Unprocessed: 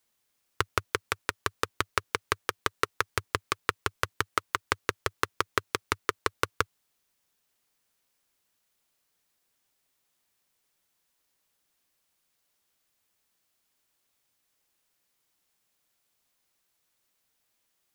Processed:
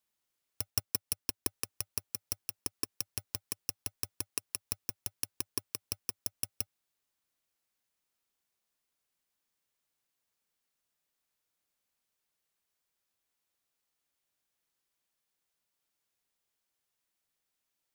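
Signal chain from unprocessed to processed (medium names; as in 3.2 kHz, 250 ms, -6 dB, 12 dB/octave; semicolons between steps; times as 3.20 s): bit-reversed sample order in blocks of 64 samples; 0.70–1.47 s: waveshaping leveller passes 2; trim -8.5 dB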